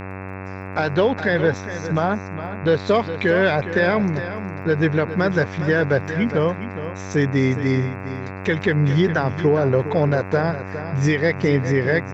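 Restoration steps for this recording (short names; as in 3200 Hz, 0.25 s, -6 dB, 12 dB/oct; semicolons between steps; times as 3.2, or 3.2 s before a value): de-click; de-hum 95.1 Hz, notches 28; inverse comb 0.41 s -11.5 dB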